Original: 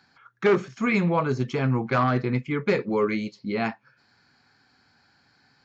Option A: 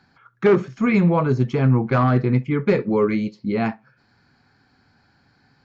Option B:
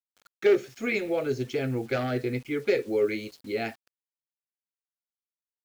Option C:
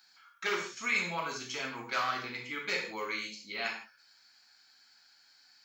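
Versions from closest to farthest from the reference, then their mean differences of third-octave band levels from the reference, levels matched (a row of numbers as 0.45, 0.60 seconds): A, B, C; 3.0, 6.5, 11.0 decibels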